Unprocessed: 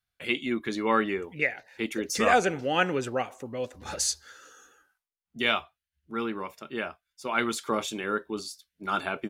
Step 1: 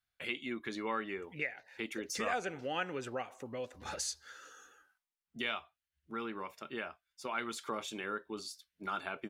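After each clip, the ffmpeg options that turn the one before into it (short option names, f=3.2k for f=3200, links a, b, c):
-af "equalizer=f=1.7k:w=0.33:g=4.5,acompressor=threshold=-34dB:ratio=2,volume=-6dB"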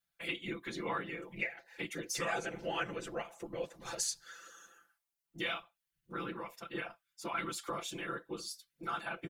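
-af "afftfilt=real='hypot(re,im)*cos(2*PI*random(0))':imag='hypot(re,im)*sin(2*PI*random(1))':win_size=512:overlap=0.75,highshelf=f=7.6k:g=7.5,aecho=1:1:5.9:0.73,volume=3.5dB"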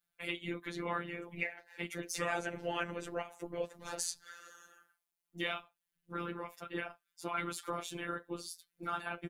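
-af "afftfilt=real='hypot(re,im)*cos(PI*b)':imag='0':win_size=1024:overlap=0.75,volume=2.5dB"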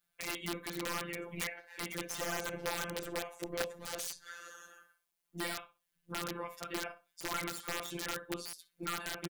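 -filter_complex "[0:a]asplit=2[a][b];[b]acompressor=threshold=-44dB:ratio=10,volume=-1.5dB[c];[a][c]amix=inputs=2:normalize=0,asplit=2[d][e];[e]adelay=62,lowpass=f=3.2k:p=1,volume=-11.5dB,asplit=2[f][g];[g]adelay=62,lowpass=f=3.2k:p=1,volume=0.21,asplit=2[h][i];[i]adelay=62,lowpass=f=3.2k:p=1,volume=0.21[j];[d][f][h][j]amix=inputs=4:normalize=0,aeval=exprs='(mod(20*val(0)+1,2)-1)/20':c=same,volume=-1dB"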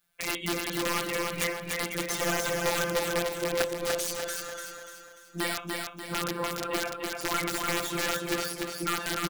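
-af "aecho=1:1:294|588|882|1176|1470|1764:0.668|0.294|0.129|0.0569|0.0251|0.011,volume=7.5dB"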